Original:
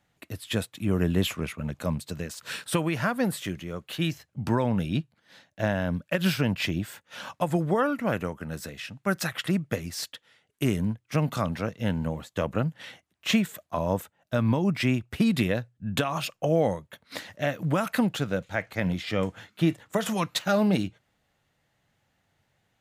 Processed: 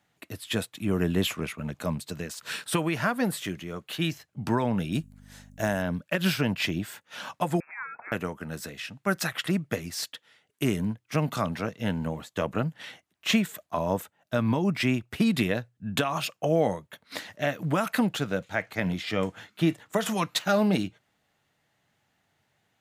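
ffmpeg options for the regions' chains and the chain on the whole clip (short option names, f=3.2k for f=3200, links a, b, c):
-filter_complex "[0:a]asettb=1/sr,asplit=3[a][b][c];[a]atrim=end=4.924[d];[b]atrim=start=4.92:end=5.82,asetpts=PTS-STARTPTS,afade=t=in:d=0.004:c=qsin,afade=t=out:st=0.896:d=0.004:c=qsin,highshelf=f=5.6k:t=q:w=1.5:g=11,aeval=exprs='val(0)+0.00631*(sin(2*PI*50*n/s)+sin(2*PI*2*50*n/s)/2+sin(2*PI*3*50*n/s)/3+sin(2*PI*4*50*n/s)/4+sin(2*PI*5*50*n/s)/5)':c=same[e];[c]atrim=start=5.816[f];[d][e]acrossfade=d=0.004:c1=hsin:c2=qsin[g];[g][f]acrossfade=d=0.004:c1=qsin:c2=hsin,asettb=1/sr,asplit=3[h][i][j];[h]atrim=end=7.604[k];[i]atrim=start=7.6:end=8.12,asetpts=PTS-STARTPTS,afade=t=in:d=0.004:c=qsin,afade=t=out:st=0.516:d=0.004:c=qsin,highpass=1.4k,acompressor=threshold=-43dB:ratio=1.5:attack=3.2:release=140:knee=1:detection=peak,lowpass=f=2.4k:t=q:w=0.5098,lowpass=f=2.4k:t=q:w=0.6013,lowpass=f=2.4k:t=q:w=0.9,lowpass=f=2.4k:t=q:w=2.563,afreqshift=-2800[l];[j]atrim=start=8.116[m];[k][l]acrossfade=d=0.004:c1=hsin:c2=qsin[n];[n][m]acrossfade=d=0.004:c1=qsin:c2=hsin,highpass=f=150:p=1,bandreject=f=530:w=12,volume=1dB"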